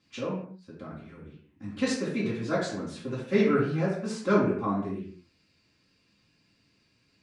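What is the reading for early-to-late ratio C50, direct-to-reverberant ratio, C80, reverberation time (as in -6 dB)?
3.0 dB, -10.0 dB, 6.5 dB, no single decay rate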